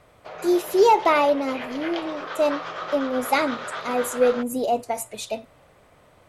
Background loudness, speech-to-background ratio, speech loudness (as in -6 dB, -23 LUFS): -33.5 LUFS, 10.5 dB, -23.0 LUFS